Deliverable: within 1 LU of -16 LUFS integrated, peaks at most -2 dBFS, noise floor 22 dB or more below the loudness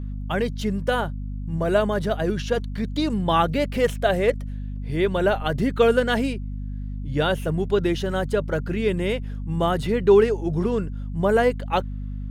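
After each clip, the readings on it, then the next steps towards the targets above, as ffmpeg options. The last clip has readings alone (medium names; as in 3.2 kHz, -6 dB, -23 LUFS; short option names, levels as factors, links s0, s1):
hum 50 Hz; highest harmonic 250 Hz; hum level -28 dBFS; loudness -23.0 LUFS; peak level -5.0 dBFS; loudness target -16.0 LUFS
-> -af "bandreject=f=50:t=h:w=4,bandreject=f=100:t=h:w=4,bandreject=f=150:t=h:w=4,bandreject=f=200:t=h:w=4,bandreject=f=250:t=h:w=4"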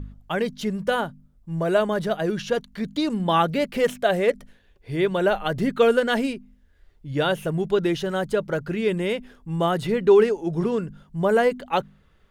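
hum not found; loudness -23.5 LUFS; peak level -6.5 dBFS; loudness target -16.0 LUFS
-> -af "volume=2.37,alimiter=limit=0.794:level=0:latency=1"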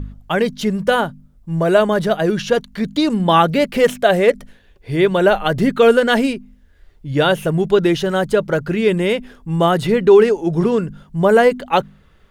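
loudness -16.5 LUFS; peak level -2.0 dBFS; noise floor -51 dBFS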